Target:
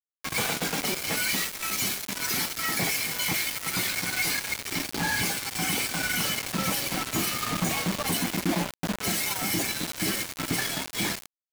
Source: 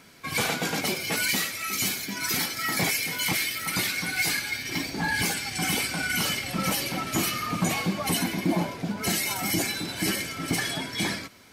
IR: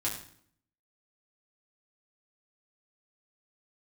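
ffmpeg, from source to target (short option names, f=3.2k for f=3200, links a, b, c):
-filter_complex "[0:a]asplit=2[a][b];[b]alimiter=limit=-21dB:level=0:latency=1:release=120,volume=-1.5dB[c];[a][c]amix=inputs=2:normalize=0,acrusher=bits=3:mix=0:aa=0.000001,volume=-5.5dB"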